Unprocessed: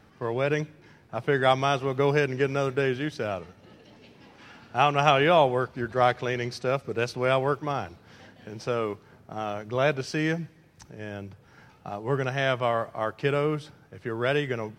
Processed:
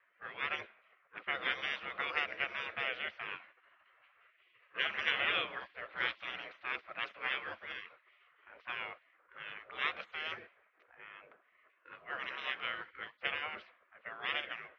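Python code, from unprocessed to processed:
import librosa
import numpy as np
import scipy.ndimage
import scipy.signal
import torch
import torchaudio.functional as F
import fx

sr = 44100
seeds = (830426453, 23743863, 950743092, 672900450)

y = fx.env_lowpass(x, sr, base_hz=1200.0, full_db=-18.5)
y = fx.spec_gate(y, sr, threshold_db=-20, keep='weak')
y = fx.cabinet(y, sr, low_hz=140.0, low_slope=12, high_hz=3200.0, hz=(170.0, 260.0, 500.0, 860.0, 1300.0, 2000.0), db=(-7, -9, 3, -9, 3, 3))
y = y * 10.0 ** (1.5 / 20.0)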